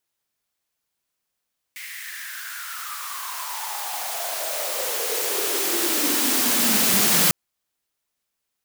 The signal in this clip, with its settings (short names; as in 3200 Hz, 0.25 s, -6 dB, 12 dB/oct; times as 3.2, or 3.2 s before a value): swept filtered noise white, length 5.55 s highpass, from 2100 Hz, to 170 Hz, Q 6.8, exponential, gain ramp +22 dB